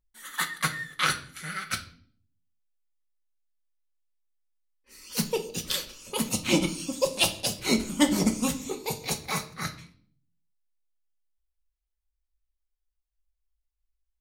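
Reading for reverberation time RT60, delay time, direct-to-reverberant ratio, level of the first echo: 0.50 s, none, 5.0 dB, none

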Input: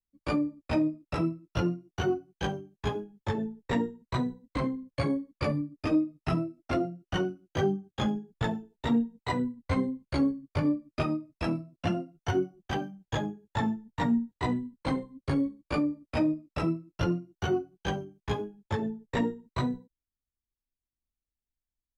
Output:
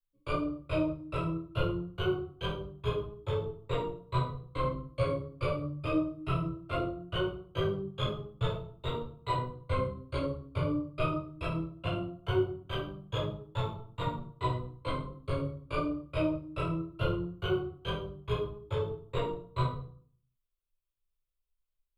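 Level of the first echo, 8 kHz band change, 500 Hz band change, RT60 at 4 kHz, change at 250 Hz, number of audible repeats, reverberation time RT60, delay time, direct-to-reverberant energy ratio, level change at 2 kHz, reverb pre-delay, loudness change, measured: none, n/a, -0.5 dB, 0.40 s, -7.5 dB, none, 0.50 s, none, -3.5 dB, -4.0 dB, 7 ms, -3.0 dB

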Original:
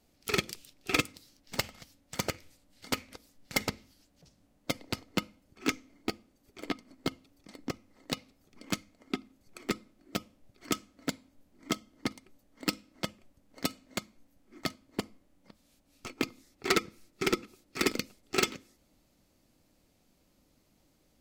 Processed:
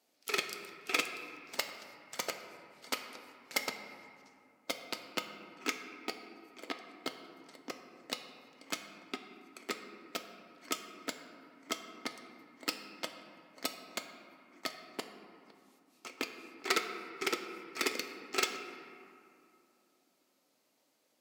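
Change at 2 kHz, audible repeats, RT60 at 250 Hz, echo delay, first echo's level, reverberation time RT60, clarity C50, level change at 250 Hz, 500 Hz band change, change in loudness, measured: -2.0 dB, none, 3.4 s, none, none, 2.5 s, 7.5 dB, -10.0 dB, -5.0 dB, -3.5 dB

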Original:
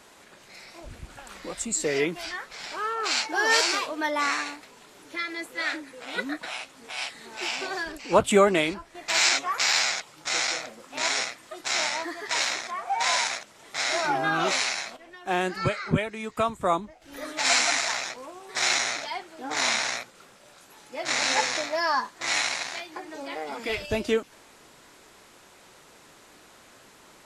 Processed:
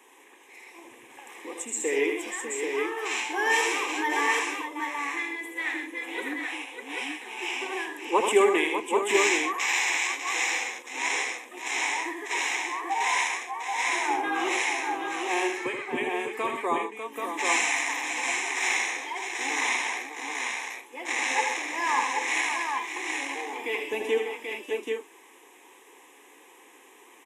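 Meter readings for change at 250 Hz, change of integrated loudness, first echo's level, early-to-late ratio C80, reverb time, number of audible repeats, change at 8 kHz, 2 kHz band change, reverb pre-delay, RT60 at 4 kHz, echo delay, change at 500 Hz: -1.0 dB, -1.0 dB, -6.0 dB, none, none, 5, -2.5 dB, +1.0 dB, none, none, 79 ms, -0.5 dB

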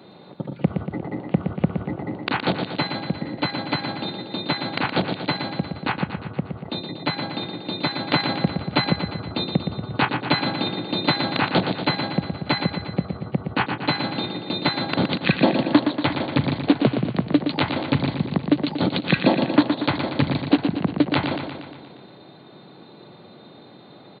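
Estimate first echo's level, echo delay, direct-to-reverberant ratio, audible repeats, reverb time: -7.0 dB, 0.118 s, none, 7, none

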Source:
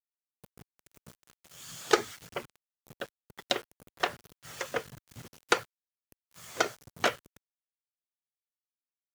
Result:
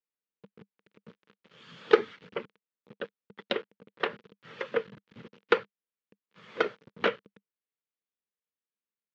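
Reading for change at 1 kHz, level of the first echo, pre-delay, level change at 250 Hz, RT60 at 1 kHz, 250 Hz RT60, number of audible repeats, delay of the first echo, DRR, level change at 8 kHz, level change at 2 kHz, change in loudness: -1.5 dB, none, none, +2.0 dB, none, none, none, none, none, under -20 dB, 0.0 dB, +1.5 dB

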